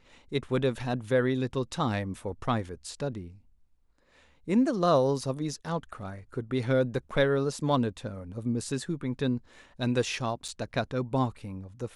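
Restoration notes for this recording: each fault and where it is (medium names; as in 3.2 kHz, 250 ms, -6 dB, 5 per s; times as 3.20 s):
10.48–10.49 s: dropout 5.6 ms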